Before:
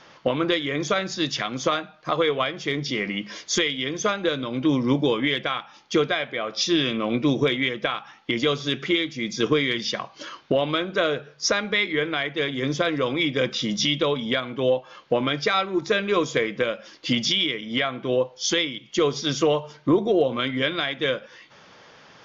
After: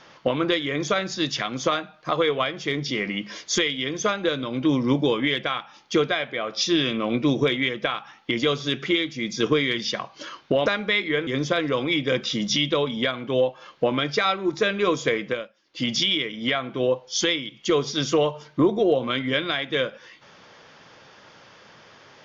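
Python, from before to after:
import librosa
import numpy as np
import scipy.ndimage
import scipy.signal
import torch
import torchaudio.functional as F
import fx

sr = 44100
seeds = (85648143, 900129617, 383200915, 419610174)

y = fx.edit(x, sr, fx.cut(start_s=10.66, length_s=0.84),
    fx.cut(start_s=12.11, length_s=0.45),
    fx.fade_down_up(start_s=16.53, length_s=0.7, db=-22.0, fade_s=0.29), tone=tone)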